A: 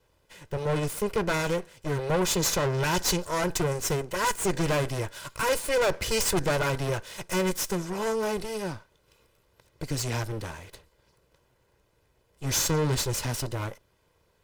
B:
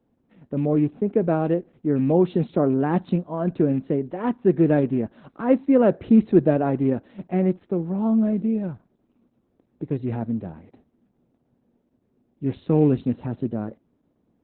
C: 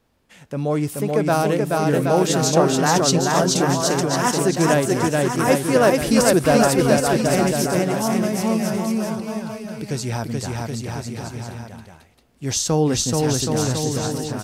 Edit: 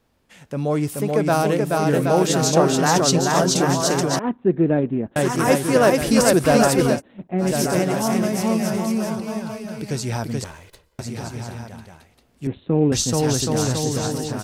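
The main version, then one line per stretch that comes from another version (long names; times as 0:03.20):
C
0:04.19–0:05.16: punch in from B
0:06.94–0:07.46: punch in from B, crossfade 0.16 s
0:10.44–0:10.99: punch in from A
0:12.47–0:12.92: punch in from B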